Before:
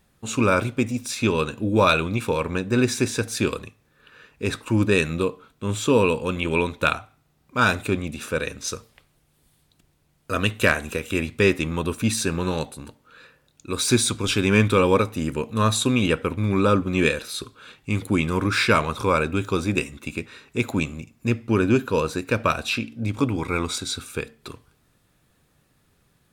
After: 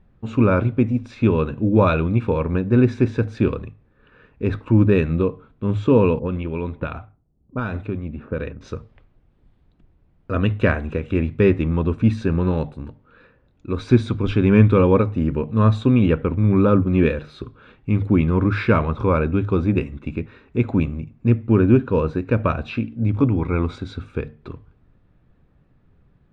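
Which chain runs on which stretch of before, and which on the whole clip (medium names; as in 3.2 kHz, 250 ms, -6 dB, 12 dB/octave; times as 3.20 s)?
6.19–8.61 s: level-controlled noise filter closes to 370 Hz, open at -18.5 dBFS + tremolo 1.4 Hz, depth 57% + compression, threshold -22 dBFS
whole clip: low-pass 2.8 kHz 12 dB/octave; tilt EQ -3 dB/octave; hum notches 50/100/150 Hz; trim -1 dB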